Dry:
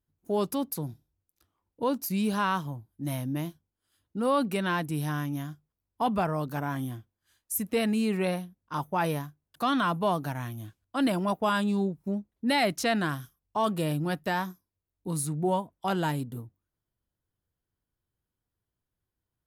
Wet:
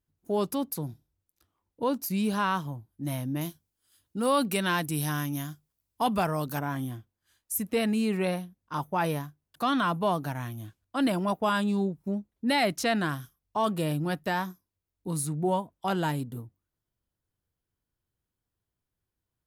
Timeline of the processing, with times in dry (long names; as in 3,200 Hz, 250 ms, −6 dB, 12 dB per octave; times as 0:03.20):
0:03.41–0:06.59: high-shelf EQ 3,300 Hz +10.5 dB